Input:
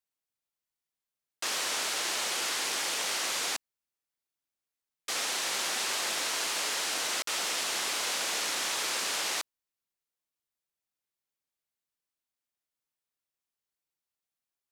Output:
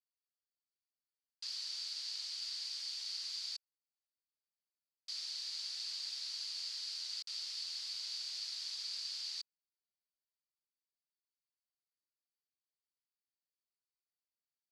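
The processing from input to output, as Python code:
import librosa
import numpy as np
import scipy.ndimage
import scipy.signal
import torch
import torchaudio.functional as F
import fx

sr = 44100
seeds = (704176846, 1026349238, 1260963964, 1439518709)

y = fx.bandpass_q(x, sr, hz=4600.0, q=9.4)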